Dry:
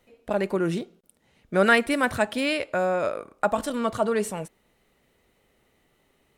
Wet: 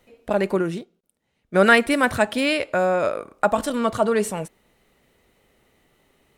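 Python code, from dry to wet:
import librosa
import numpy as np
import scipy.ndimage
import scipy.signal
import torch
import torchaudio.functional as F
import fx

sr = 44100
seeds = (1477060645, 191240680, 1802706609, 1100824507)

y = fx.upward_expand(x, sr, threshold_db=-42.0, expansion=1.5, at=(0.61, 1.54), fade=0.02)
y = y * 10.0 ** (4.0 / 20.0)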